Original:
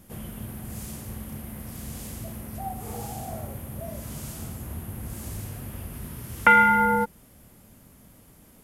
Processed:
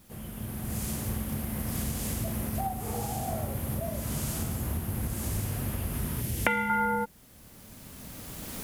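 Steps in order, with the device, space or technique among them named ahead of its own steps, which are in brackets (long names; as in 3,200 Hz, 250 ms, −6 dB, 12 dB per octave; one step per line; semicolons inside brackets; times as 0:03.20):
0:06.21–0:06.70: parametric band 1,200 Hz −14 dB 0.75 octaves
cheap recorder with automatic gain (white noise bed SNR 26 dB; camcorder AGC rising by 13 dB per second)
level −6 dB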